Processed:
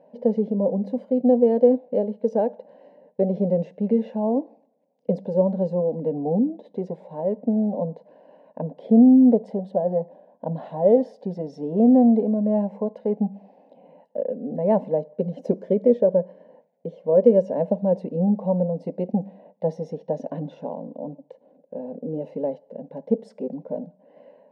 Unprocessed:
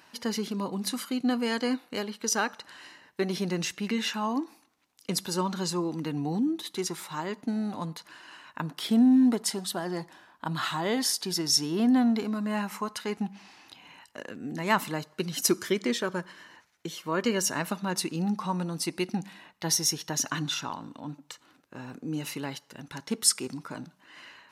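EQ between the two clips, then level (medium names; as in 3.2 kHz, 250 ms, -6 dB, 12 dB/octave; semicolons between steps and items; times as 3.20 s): brick-wall FIR high-pass 150 Hz; resonant low-pass 540 Hz, resonance Q 4.9; static phaser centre 340 Hz, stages 6; +7.0 dB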